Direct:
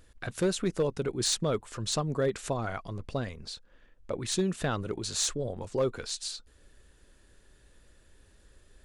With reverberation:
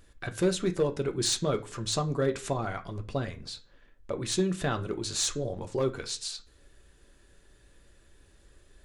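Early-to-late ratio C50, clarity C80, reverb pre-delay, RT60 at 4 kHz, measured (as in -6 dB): 17.5 dB, 22.5 dB, 3 ms, 0.40 s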